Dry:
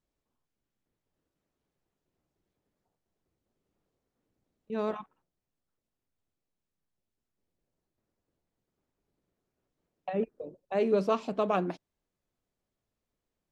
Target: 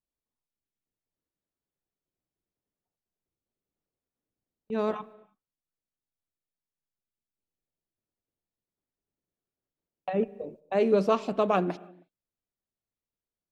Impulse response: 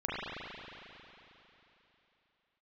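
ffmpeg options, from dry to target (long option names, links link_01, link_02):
-filter_complex "[0:a]agate=range=-15dB:threshold=-52dB:ratio=16:detection=peak,asplit=2[link_01][link_02];[link_02]equalizer=frequency=1100:width_type=o:width=0.45:gain=-4.5[link_03];[1:a]atrim=start_sample=2205,afade=type=out:start_time=0.38:duration=0.01,atrim=end_sample=17199[link_04];[link_03][link_04]afir=irnorm=-1:irlink=0,volume=-26dB[link_05];[link_01][link_05]amix=inputs=2:normalize=0,volume=3dB"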